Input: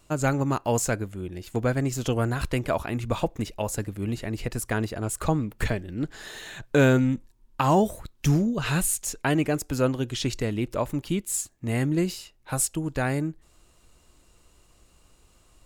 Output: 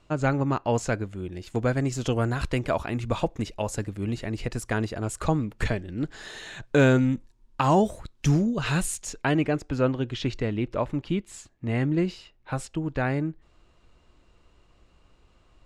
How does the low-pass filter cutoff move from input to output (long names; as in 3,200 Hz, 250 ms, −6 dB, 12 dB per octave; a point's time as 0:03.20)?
0:00.69 4,000 Hz
0:01.28 7,500 Hz
0:08.88 7,500 Hz
0:09.62 3,400 Hz